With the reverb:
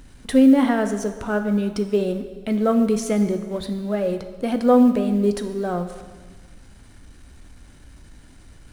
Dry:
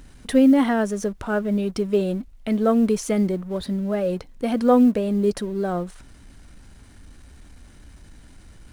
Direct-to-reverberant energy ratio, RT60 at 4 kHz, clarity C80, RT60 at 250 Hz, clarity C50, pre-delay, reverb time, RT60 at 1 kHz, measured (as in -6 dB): 8.0 dB, 1.4 s, 11.5 dB, 1.5 s, 10.0 dB, 4 ms, 1.5 s, 1.5 s